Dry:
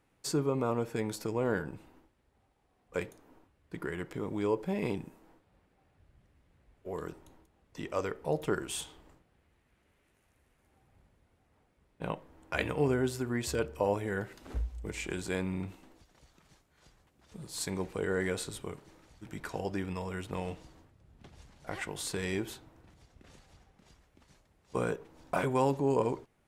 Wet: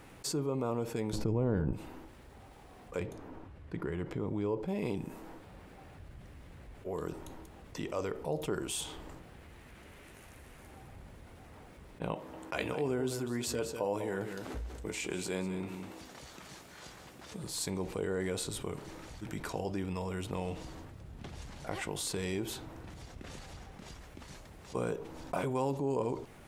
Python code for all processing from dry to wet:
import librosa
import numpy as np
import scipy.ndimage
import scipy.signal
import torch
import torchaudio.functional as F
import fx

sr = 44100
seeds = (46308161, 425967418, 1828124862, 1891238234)

y = fx.chain(x, sr, fx.riaa(side='playback'),
    fx.env_flatten(amount_pct=50), at=(1.13, 1.73))
y = fx.chain(y, sr, fx.lowpass(hz=2600.0, slope=6),
    fx.peak_eq(hz=81.0, db=5.5, octaves=2.0), at=(3.0, 4.68))
y = fx.chain(y, sr, fx.highpass(hz=190.0, slope=6),
    fx.doubler(ms=16.0, db=-13.0),
    fx.echo_single(ms=196, db=-12.0), at=(12.14, 17.44))
y = fx.dynamic_eq(y, sr, hz=1700.0, q=1.7, threshold_db=-53.0, ratio=4.0, max_db=-6)
y = fx.env_flatten(y, sr, amount_pct=50)
y = y * librosa.db_to_amplitude(-6.5)